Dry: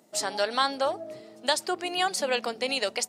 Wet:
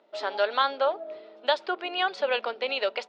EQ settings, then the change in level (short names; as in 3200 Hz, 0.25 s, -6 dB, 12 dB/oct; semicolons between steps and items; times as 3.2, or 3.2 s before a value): speaker cabinet 350–3900 Hz, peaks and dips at 410 Hz +6 dB, 580 Hz +7 dB, 950 Hz +6 dB, 1400 Hz +8 dB, 2500 Hz +4 dB, 3500 Hz +6 dB; -4.0 dB